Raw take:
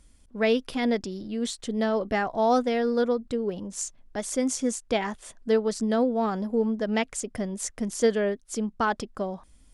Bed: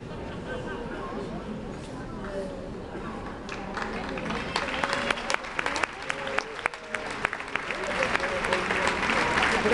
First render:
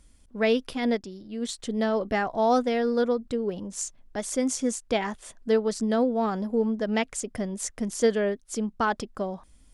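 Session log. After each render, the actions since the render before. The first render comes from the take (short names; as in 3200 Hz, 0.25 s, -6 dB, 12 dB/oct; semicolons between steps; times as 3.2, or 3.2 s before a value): 0.73–1.49 upward expander, over -39 dBFS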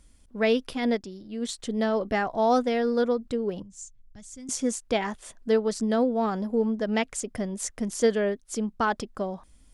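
3.62–4.49 EQ curve 110 Hz 0 dB, 480 Hz -27 dB, 5100 Hz -14 dB, 7300 Hz -8 dB, 11000 Hz -19 dB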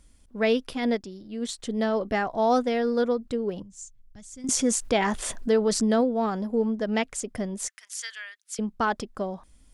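4.44–6.01 fast leveller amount 50%; 7.68–8.59 HPF 1500 Hz 24 dB/oct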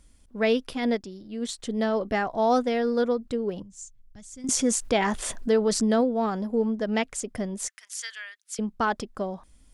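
nothing audible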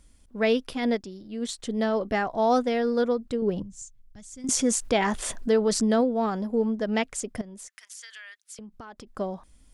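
3.42–3.82 low shelf 340 Hz +8 dB; 7.41–9.07 compressor 12:1, threshold -39 dBFS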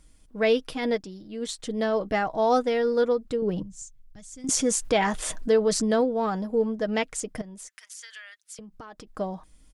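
comb 6.4 ms, depth 37%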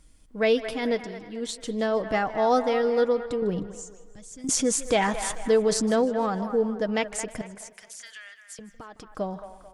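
band-limited delay 0.22 s, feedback 41%, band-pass 1200 Hz, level -9 dB; warbling echo 0.155 s, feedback 47%, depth 123 cents, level -19 dB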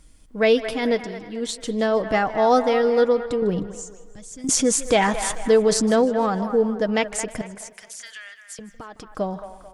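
gain +4.5 dB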